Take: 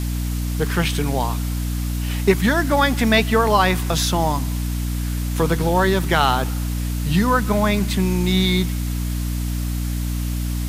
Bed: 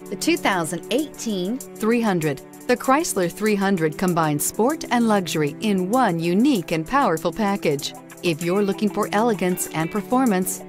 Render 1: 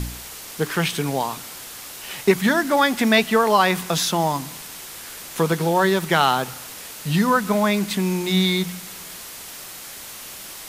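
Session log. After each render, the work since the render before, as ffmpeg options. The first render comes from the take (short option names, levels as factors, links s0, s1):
-af "bandreject=f=60:t=h:w=4,bandreject=f=120:t=h:w=4,bandreject=f=180:t=h:w=4,bandreject=f=240:t=h:w=4,bandreject=f=300:t=h:w=4"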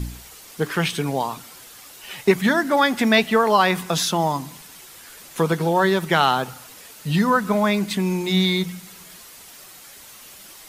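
-af "afftdn=nr=8:nf=-37"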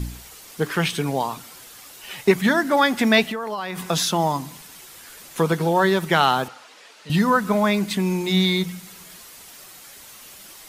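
-filter_complex "[0:a]asettb=1/sr,asplit=3[s0][s1][s2];[s0]atrim=end=3.244[s3];[s1]atrim=start=3.24:end=3.82,asetpts=PTS-STARTPTS,afade=t=in:d=0.004:c=qsin,afade=t=out:st=0.576:d=0.004:c=qsin,acompressor=threshold=0.0631:ratio=10:attack=3.2:release=140:knee=1:detection=peak[s4];[s2]atrim=start=3.816[s5];[s3][s4]acrossfade=d=0.004:c1=hsin:c2=qsin[s6];[s6][s5]acrossfade=d=0.004:c1=qsin:c2=hsin,asettb=1/sr,asplit=3[s7][s8][s9];[s7]atrim=end=6.484[s10];[s8]atrim=start=6.48:end=7.1,asetpts=PTS-STARTPTS,afade=t=in:d=0.004:c=qsin,afade=t=out:st=0.616:d=0.004:c=qsin,highpass=400,lowpass=4700[s11];[s9]atrim=start=7.096[s12];[s10][s11]acrossfade=d=0.004:c1=hsin:c2=qsin[s13];[s13][s12]acrossfade=d=0.004:c1=qsin:c2=hsin"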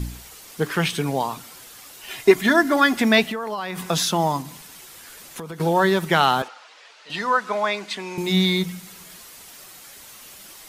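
-filter_complex "[0:a]asettb=1/sr,asplit=3[s0][s1][s2];[s0]atrim=end=2.084[s3];[s1]atrim=start=2.08:end=2.97,asetpts=PTS-STARTPTS,afade=t=in:d=0.004:c=qsin,afade=t=out:st=0.886:d=0.004:c=qsin,aecho=1:1:2.9:0.65,atrim=end_sample=39249[s4];[s2]atrim=start=2.966[s5];[s3][s4]acrossfade=d=0.004:c1=hsin:c2=qsin[s6];[s6][s5]acrossfade=d=0.004:c1=qsin:c2=hsin,asettb=1/sr,asplit=3[s7][s8][s9];[s7]atrim=end=4.414[s10];[s8]atrim=start=4.41:end=5.6,asetpts=PTS-STARTPTS,afade=t=in:d=0.004:c=qsin,afade=t=out:st=1.186:d=0.004:c=qsin,acompressor=threshold=0.0282:ratio=6:attack=3.2:release=140:knee=1:detection=peak[s11];[s9]atrim=start=5.596[s12];[s10][s11]acrossfade=d=0.004:c1=hsin:c2=qsin[s13];[s13][s12]acrossfade=d=0.004:c1=qsin:c2=hsin,asettb=1/sr,asplit=3[s14][s15][s16];[s14]atrim=end=6.424[s17];[s15]atrim=start=6.42:end=8.18,asetpts=PTS-STARTPTS,afade=t=in:d=0.004:c=qsin,afade=t=out:st=1.756:d=0.004:c=qsin,highpass=530,lowpass=6000[s18];[s16]atrim=start=8.176[s19];[s17][s18]acrossfade=d=0.004:c1=hsin:c2=qsin[s20];[s20][s19]acrossfade=d=0.004:c1=qsin:c2=hsin"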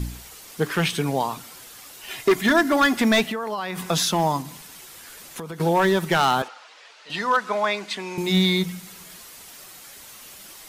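-af "asoftclip=type=hard:threshold=0.237"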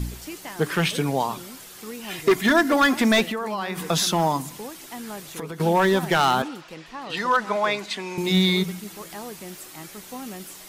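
-filter_complex "[1:a]volume=0.126[s0];[0:a][s0]amix=inputs=2:normalize=0"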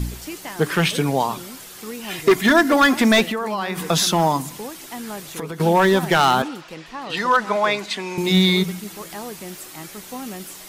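-af "volume=1.5"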